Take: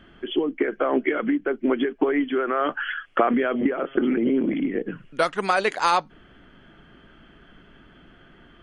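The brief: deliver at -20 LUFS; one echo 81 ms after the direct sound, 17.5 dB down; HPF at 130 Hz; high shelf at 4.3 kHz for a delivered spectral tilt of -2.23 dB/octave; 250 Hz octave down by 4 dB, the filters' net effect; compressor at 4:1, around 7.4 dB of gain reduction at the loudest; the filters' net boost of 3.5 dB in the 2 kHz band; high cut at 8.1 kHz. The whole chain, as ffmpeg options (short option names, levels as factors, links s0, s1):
-af "highpass=130,lowpass=8100,equalizer=f=250:t=o:g=-4.5,equalizer=f=2000:t=o:g=6,highshelf=f=4300:g=-7,acompressor=threshold=0.0631:ratio=4,aecho=1:1:81:0.133,volume=2.66"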